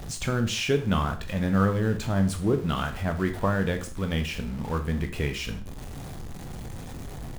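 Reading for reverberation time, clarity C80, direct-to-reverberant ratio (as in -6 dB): 0.40 s, 16.0 dB, 6.0 dB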